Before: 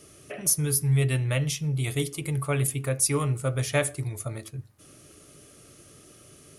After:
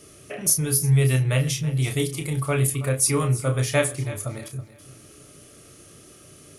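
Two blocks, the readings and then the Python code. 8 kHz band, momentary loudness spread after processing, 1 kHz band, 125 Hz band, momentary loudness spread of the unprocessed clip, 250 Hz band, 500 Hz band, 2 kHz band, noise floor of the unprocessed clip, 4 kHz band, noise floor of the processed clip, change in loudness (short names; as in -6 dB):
+3.5 dB, 13 LU, +3.5 dB, +4.0 dB, 12 LU, +4.0 dB, +4.0 dB, +3.5 dB, -53 dBFS, +3.5 dB, -49 dBFS, +4.0 dB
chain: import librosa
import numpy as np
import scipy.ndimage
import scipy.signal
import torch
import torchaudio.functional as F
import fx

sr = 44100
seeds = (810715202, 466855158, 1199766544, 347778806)

y = fx.doubler(x, sr, ms=31.0, db=-7.0)
y = fx.echo_feedback(y, sr, ms=326, feedback_pct=30, wet_db=-15.5)
y = y * librosa.db_to_amplitude(2.5)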